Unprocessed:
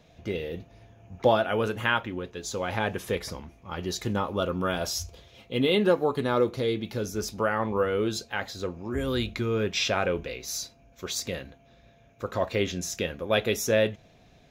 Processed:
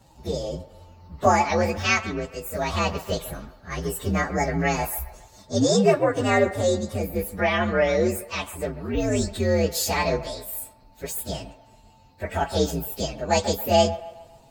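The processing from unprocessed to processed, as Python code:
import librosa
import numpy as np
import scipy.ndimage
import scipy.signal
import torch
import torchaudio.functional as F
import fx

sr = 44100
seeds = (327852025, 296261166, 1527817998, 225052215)

y = fx.partial_stretch(x, sr, pct=126)
y = fx.echo_wet_bandpass(y, sr, ms=137, feedback_pct=45, hz=1100.0, wet_db=-13)
y = y * 10.0 ** (6.5 / 20.0)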